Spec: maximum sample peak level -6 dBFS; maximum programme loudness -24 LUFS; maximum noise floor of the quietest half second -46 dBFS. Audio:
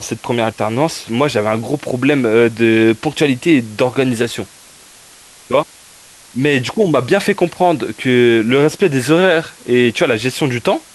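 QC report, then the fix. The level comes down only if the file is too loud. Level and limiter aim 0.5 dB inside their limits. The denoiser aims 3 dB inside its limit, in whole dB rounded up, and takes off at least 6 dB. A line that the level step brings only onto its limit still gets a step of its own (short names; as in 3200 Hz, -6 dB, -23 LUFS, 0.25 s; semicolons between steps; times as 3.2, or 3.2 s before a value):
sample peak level -1.5 dBFS: fail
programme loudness -15.0 LUFS: fail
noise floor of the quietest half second -42 dBFS: fail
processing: gain -9.5 dB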